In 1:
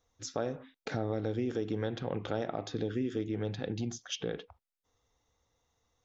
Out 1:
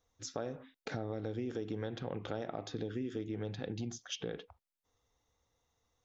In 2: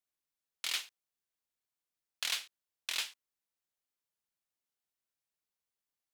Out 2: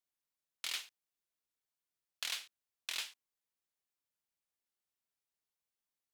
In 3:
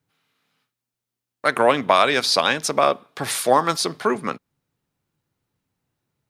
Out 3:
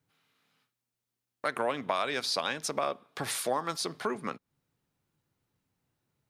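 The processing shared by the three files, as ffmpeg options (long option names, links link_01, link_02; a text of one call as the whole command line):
ffmpeg -i in.wav -af "acompressor=threshold=-33dB:ratio=2,volume=-2.5dB" out.wav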